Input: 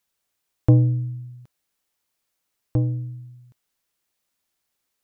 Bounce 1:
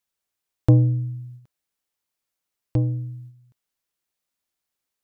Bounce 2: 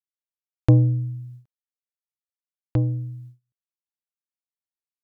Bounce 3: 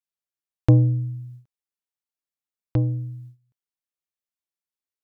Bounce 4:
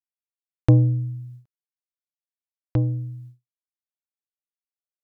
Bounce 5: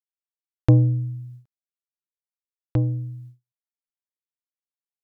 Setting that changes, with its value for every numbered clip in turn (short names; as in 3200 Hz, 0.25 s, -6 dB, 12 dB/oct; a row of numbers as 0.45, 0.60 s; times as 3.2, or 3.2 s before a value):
gate, range: -6, -32, -19, -60, -45 dB